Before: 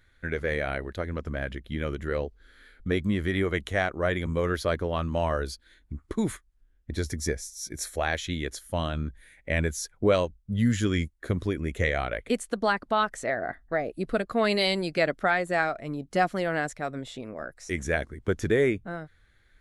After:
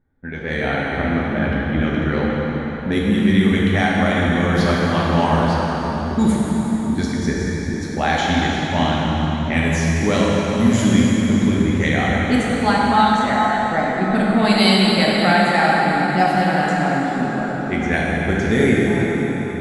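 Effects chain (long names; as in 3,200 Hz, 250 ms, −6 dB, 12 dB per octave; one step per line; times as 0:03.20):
dynamic equaliser 470 Hz, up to −4 dB, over −35 dBFS, Q 1.1
low-pass that shuts in the quiet parts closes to 670 Hz, open at −22 dBFS
hollow resonant body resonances 210/810 Hz, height 12 dB, ringing for 20 ms
automatic gain control gain up to 9 dB
high-shelf EQ 2,600 Hz +11.5 dB
dense smooth reverb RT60 5 s, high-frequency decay 0.75×, DRR −5.5 dB
level −7.5 dB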